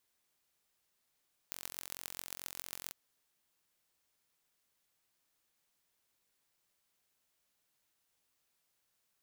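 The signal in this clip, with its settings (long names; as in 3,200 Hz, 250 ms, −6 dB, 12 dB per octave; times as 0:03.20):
impulse train 44.6 per second, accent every 6, −12 dBFS 1.40 s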